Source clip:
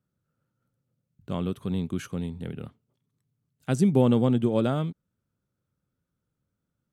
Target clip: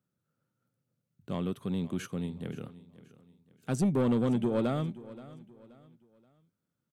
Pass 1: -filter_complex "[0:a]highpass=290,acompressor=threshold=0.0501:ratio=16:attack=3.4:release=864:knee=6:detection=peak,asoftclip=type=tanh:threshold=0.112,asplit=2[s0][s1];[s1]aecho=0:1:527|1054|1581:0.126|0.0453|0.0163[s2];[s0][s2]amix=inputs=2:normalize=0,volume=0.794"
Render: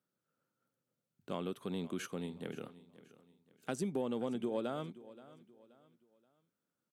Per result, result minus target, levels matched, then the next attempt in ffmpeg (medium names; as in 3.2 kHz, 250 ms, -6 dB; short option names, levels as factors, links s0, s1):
compression: peak gain reduction +11.5 dB; 125 Hz band -5.0 dB
-filter_complex "[0:a]highpass=290,asoftclip=type=tanh:threshold=0.112,asplit=2[s0][s1];[s1]aecho=0:1:527|1054|1581:0.126|0.0453|0.0163[s2];[s0][s2]amix=inputs=2:normalize=0,volume=0.794"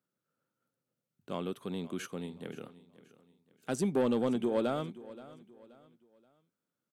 125 Hz band -6.5 dB
-filter_complex "[0:a]highpass=120,asoftclip=type=tanh:threshold=0.112,asplit=2[s0][s1];[s1]aecho=0:1:527|1054|1581:0.126|0.0453|0.0163[s2];[s0][s2]amix=inputs=2:normalize=0,volume=0.794"